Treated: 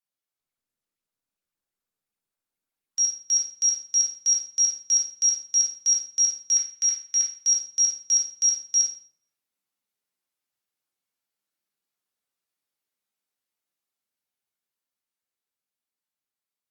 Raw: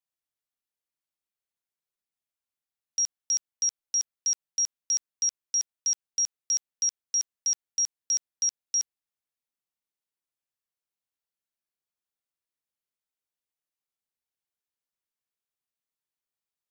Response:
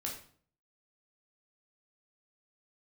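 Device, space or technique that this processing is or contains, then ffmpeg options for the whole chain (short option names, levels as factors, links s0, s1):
far-field microphone of a smart speaker: -filter_complex "[0:a]asettb=1/sr,asplit=3[s0][s1][s2];[s0]atrim=end=6.534[s3];[s1]atrim=start=6.53:end=7.35,asetpts=PTS-STARTPTS,afade=t=in:d=0.004:c=qsin,afade=t=out:st=0.816:d=0.004:c=qsin,equalizer=f=125:t=o:w=1:g=-10,equalizer=f=250:t=o:w=1:g=-4,equalizer=f=500:t=o:w=1:g=-10,equalizer=f=2000:t=o:w=1:g=7,equalizer=f=8000:t=o:w=1:g=-4[s4];[s2]atrim=start=7.346[s5];[s3][s4]acrossfade=d=0.004:c1=hsin:c2=qsin[s6];[s6][s5]acrossfade=d=0.004:c1=qsin:c2=hsin[s7];[1:a]atrim=start_sample=2205[s8];[s7][s8]afir=irnorm=-1:irlink=0,highpass=130,dynaudnorm=f=510:g=11:m=1.78" -ar 48000 -c:a libopus -b:a 48k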